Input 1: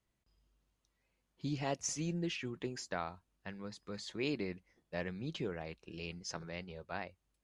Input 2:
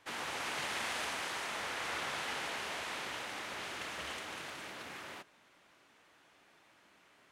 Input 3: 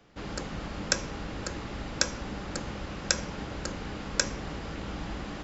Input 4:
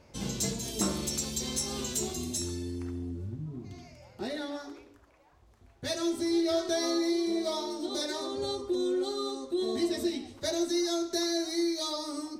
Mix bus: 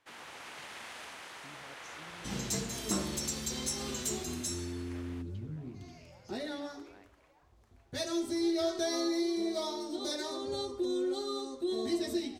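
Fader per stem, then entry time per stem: -19.0 dB, -8.5 dB, mute, -3.0 dB; 0.00 s, 0.00 s, mute, 2.10 s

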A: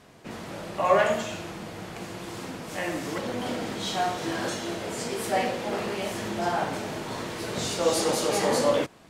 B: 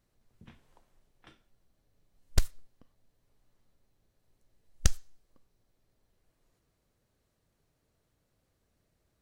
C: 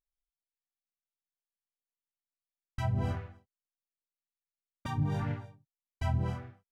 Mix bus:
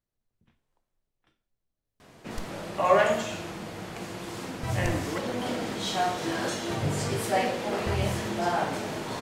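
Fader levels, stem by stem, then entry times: 0.0 dB, -13.0 dB, +0.5 dB; 2.00 s, 0.00 s, 1.85 s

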